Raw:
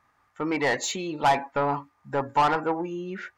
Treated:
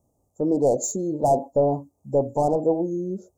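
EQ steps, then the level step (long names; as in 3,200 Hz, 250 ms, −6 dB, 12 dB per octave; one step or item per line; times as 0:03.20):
elliptic band-stop filter 590–7,100 Hz, stop band 60 dB
dynamic equaliser 680 Hz, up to +6 dB, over −44 dBFS, Q 3.1
+6.5 dB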